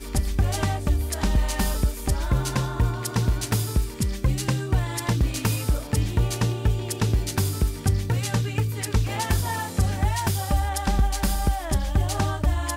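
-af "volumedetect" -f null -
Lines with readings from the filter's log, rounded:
mean_volume: -23.2 dB
max_volume: -12.1 dB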